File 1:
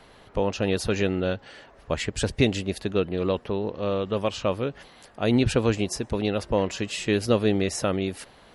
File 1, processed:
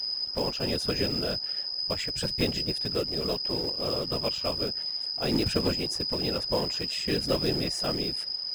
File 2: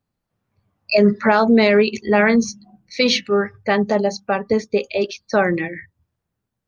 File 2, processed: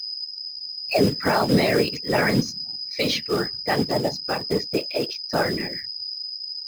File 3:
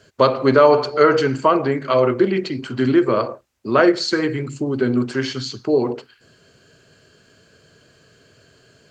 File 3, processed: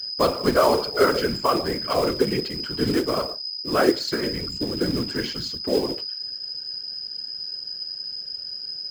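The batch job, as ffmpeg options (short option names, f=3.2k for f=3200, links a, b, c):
-af "acrusher=bits=4:mode=log:mix=0:aa=0.000001,aeval=exprs='val(0)+0.0631*sin(2*PI*5000*n/s)':c=same,afftfilt=real='hypot(re,im)*cos(2*PI*random(0))':imag='hypot(re,im)*sin(2*PI*random(1))':win_size=512:overlap=0.75"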